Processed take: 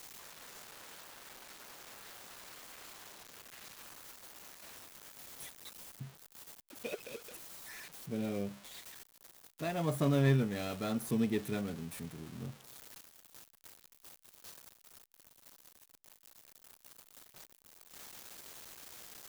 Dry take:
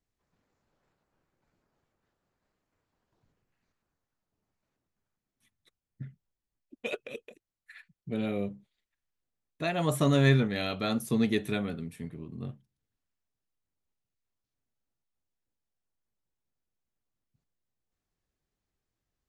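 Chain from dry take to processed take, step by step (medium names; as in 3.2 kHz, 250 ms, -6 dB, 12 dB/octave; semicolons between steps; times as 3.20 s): zero-crossing glitches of -23.5 dBFS; treble shelf 3.8 kHz -12 dB; in parallel at -11 dB: sample-and-hold 16×; on the sum: trim -7 dB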